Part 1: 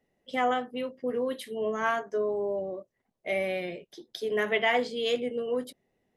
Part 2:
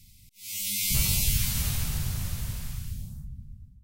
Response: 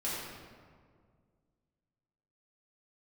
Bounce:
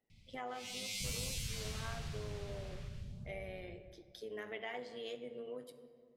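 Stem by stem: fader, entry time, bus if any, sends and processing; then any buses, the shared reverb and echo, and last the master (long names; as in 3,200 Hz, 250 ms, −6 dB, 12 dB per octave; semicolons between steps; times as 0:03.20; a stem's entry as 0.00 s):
−10.5 dB, 0.00 s, send −16 dB, amplitude modulation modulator 110 Hz, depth 35%
−2.0 dB, 0.10 s, send −21 dB, low-shelf EQ 120 Hz −7.5 dB; low-pass that shuts in the quiet parts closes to 2,700 Hz, open at −18 dBFS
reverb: on, RT60 1.9 s, pre-delay 3 ms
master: downward compressor 2 to 1, threshold −45 dBFS, peak gain reduction 10.5 dB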